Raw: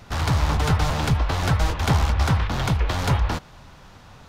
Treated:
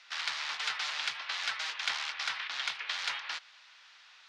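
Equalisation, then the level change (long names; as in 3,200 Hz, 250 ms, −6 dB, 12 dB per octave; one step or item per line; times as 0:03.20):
flat-topped band-pass 3,100 Hz, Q 0.84
−1.0 dB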